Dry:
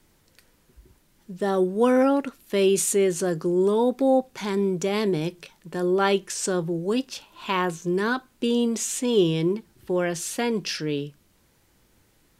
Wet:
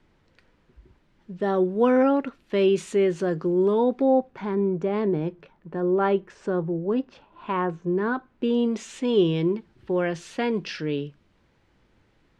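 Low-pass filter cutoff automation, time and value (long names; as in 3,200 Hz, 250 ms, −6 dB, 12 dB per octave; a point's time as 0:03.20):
0:03.92 2,900 Hz
0:04.49 1,400 Hz
0:08.10 1,400 Hz
0:08.80 3,100 Hz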